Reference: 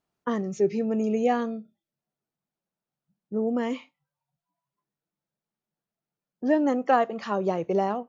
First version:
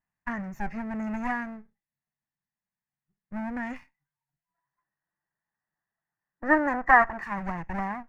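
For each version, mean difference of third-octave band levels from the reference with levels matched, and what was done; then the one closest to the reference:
7.0 dB: lower of the sound and its delayed copy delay 1.1 ms
high shelf with overshoot 2,600 Hz −9 dB, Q 3
gain on a spectral selection 0:04.54–0:07.23, 280–2,000 Hz +9 dB
parametric band 480 Hz −10 dB 2.1 octaves
level −1.5 dB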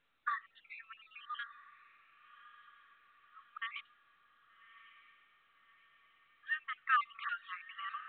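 16.0 dB: time-frequency cells dropped at random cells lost 41%
linear-phase brick-wall high-pass 1,100 Hz
on a send: feedback delay with all-pass diffusion 1,187 ms, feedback 51%, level −15 dB
on the sum: level +1.5 dB
mu-law 64 kbit/s 8,000 Hz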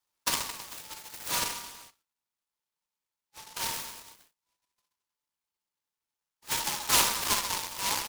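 21.0 dB: linear-phase brick-wall band-pass 830–5,100 Hz
notch filter 1,700 Hz, Q 23
reverse bouncing-ball delay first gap 60 ms, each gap 1.2×, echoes 5
short delay modulated by noise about 4,400 Hz, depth 0.2 ms
level +4.5 dB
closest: first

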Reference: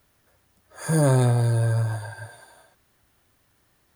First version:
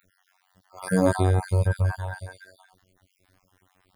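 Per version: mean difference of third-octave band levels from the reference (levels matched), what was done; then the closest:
6.0 dB: time-frequency cells dropped at random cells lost 49%
high-shelf EQ 5,900 Hz −8 dB
in parallel at +1 dB: brickwall limiter −19 dBFS, peak gain reduction 7.5 dB
on the sum: phases set to zero 93.1 Hz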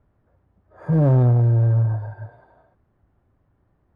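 8.5 dB: low-pass filter 1,000 Hz 12 dB per octave
low-shelf EQ 220 Hz +7.5 dB
in parallel at −7 dB: hard clipping −15.5 dBFS, distortion −12 dB
on the sum: level −3.5 dB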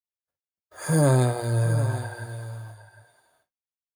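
3.5 dB: mains-hum notches 60/120/180/240 Hz
noise gate −58 dBFS, range −51 dB
single-tap delay 756 ms −13 dB
every ending faded ahead of time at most 320 dB per second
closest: third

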